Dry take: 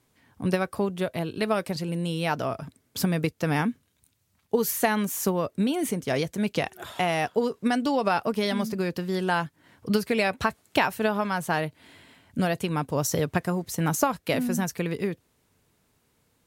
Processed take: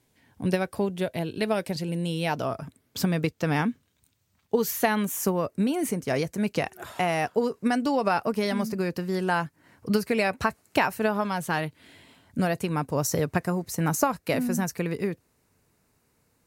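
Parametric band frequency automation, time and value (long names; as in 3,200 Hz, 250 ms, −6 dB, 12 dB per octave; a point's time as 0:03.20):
parametric band −8.5 dB 0.34 octaves
0:02.29 1,200 Hz
0:02.98 11,000 Hz
0:04.66 11,000 Hz
0:05.30 3,400 Hz
0:11.15 3,400 Hz
0:11.59 480 Hz
0:12.38 3,300 Hz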